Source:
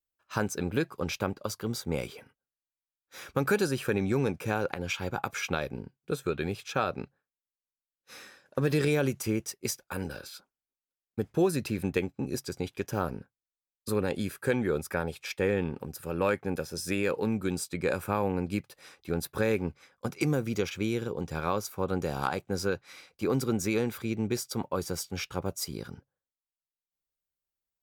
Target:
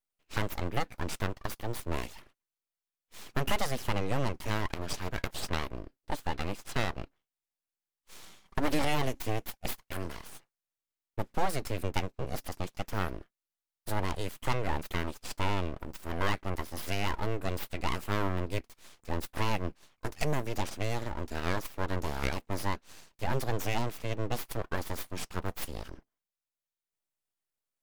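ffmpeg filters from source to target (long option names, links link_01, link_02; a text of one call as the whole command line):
ffmpeg -i in.wav -filter_complex "[0:a]asettb=1/sr,asplit=3[link_01][link_02][link_03];[link_01]atrim=end=8.234[link_04];[link_02]atrim=start=8.23:end=8.84,asetpts=PTS-STARTPTS,afade=type=in:duration=0.004:curve=qsin,afade=type=out:start_time=0.606:duration=0.004:curve=qsin,aecho=1:1:5.2:0.73,atrim=end_sample=26901[link_05];[link_03]atrim=start=8.836[link_06];[link_04][link_05]acrossfade=duration=0.004:curve1=hsin:curve2=qsin[link_07];[link_07][link_06]acrossfade=duration=0.004:curve1=qsin:curve2=hsin,aeval=exprs='abs(val(0))':channel_layout=same" out.wav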